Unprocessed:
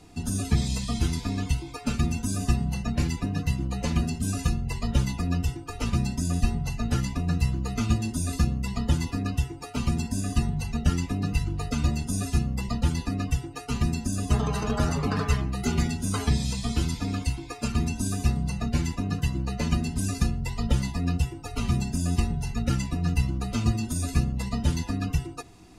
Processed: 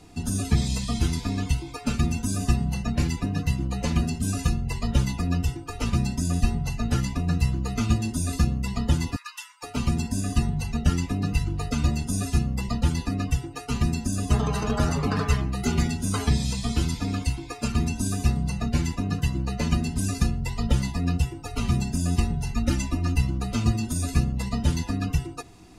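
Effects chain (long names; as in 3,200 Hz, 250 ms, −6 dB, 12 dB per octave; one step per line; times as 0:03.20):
0:09.16–0:09.63: linear-phase brick-wall high-pass 860 Hz
0:22.55–0:23.16: comb filter 3.3 ms
level +1.5 dB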